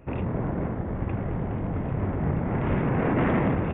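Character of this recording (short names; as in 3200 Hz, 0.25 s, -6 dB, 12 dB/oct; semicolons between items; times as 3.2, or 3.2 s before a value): noise floor -31 dBFS; spectral tilt -6.5 dB/oct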